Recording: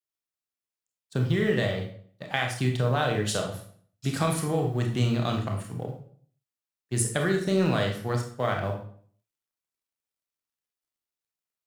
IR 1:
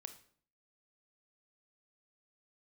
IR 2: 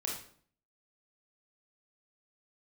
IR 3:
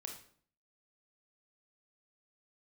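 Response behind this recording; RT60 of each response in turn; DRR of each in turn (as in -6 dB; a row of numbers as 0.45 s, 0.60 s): 3; 0.55 s, 0.55 s, 0.55 s; 8.0 dB, -2.5 dB, 2.0 dB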